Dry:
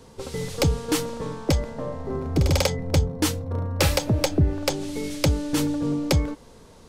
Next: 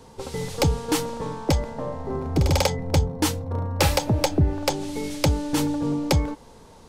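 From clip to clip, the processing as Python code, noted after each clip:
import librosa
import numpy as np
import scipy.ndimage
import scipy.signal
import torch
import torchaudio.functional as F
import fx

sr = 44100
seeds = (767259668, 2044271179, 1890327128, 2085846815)

y = fx.peak_eq(x, sr, hz=860.0, db=7.0, octaves=0.35)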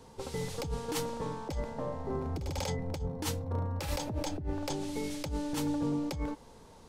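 y = fx.over_compress(x, sr, threshold_db=-24.0, ratio=-1.0)
y = y * 10.0 ** (-8.5 / 20.0)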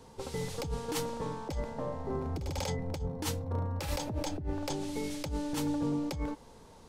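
y = x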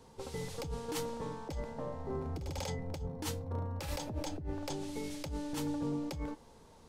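y = fx.comb_fb(x, sr, f0_hz=77.0, decay_s=0.2, harmonics='all', damping=0.0, mix_pct=40)
y = y * 10.0 ** (-1.5 / 20.0)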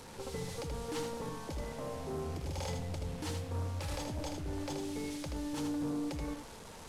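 y = fx.delta_mod(x, sr, bps=64000, step_db=-45.5)
y = 10.0 ** (-33.0 / 20.0) * np.tanh(y / 10.0 ** (-33.0 / 20.0))
y = y + 10.0 ** (-5.5 / 20.0) * np.pad(y, (int(79 * sr / 1000.0), 0))[:len(y)]
y = y * 10.0 ** (1.0 / 20.0)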